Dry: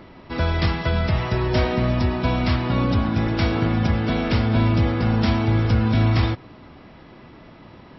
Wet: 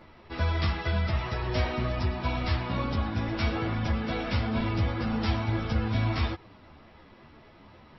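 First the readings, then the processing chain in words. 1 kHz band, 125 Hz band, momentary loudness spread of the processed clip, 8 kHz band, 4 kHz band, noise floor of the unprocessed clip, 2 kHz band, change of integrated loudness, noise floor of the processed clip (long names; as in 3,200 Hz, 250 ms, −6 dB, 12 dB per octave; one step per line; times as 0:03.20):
−6.5 dB, −8.5 dB, 3 LU, can't be measured, −6.0 dB, −46 dBFS, −6.0 dB, −8.0 dB, −54 dBFS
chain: parametric band 240 Hz −4.5 dB 1.7 octaves
string-ensemble chorus
level −3 dB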